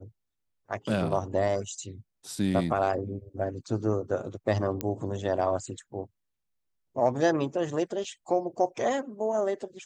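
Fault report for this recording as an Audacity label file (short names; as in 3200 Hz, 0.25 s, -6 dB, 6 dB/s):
4.810000	4.810000	pop -14 dBFS
8.040000	8.040000	gap 3 ms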